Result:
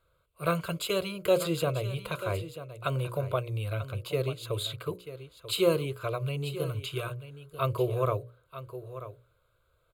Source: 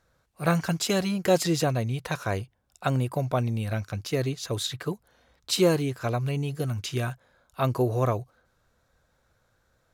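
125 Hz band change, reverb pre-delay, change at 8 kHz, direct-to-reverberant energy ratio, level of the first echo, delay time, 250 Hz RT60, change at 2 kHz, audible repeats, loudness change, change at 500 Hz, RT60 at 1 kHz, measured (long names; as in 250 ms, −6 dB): −4.5 dB, no reverb audible, −8.0 dB, no reverb audible, −13.0 dB, 939 ms, no reverb audible, −4.5 dB, 1, −4.0 dB, −1.5 dB, no reverb audible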